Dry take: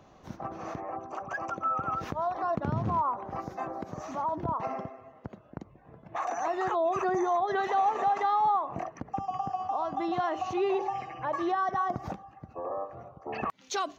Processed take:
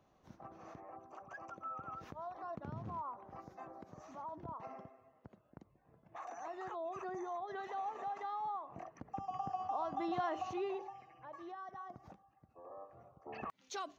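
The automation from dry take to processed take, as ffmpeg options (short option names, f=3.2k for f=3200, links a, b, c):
-af "volume=1dB,afade=t=in:st=8.7:d=0.83:silence=0.398107,afade=t=out:st=10.34:d=0.62:silence=0.237137,afade=t=in:st=12.57:d=0.73:silence=0.398107"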